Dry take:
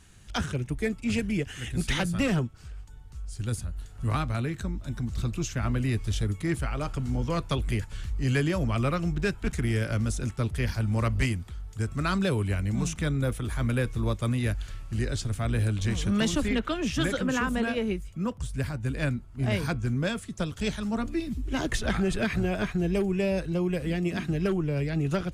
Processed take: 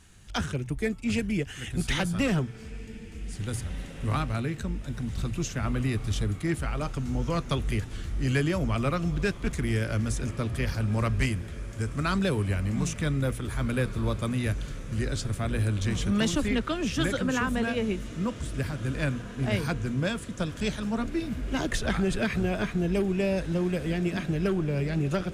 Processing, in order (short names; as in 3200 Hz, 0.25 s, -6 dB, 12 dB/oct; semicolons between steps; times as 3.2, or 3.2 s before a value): notches 60/120 Hz; diffused feedback echo 1.836 s, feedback 61%, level -15.5 dB